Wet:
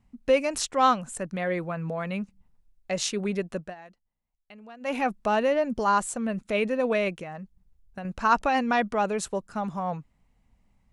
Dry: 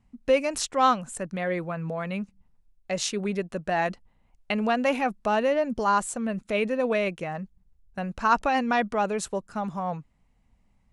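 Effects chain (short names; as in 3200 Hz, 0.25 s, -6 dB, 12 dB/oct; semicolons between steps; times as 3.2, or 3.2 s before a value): 3.56–4.99 dip -21.5 dB, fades 0.19 s; 7.17–8.05 compressor 2:1, threshold -39 dBFS, peak gain reduction 7 dB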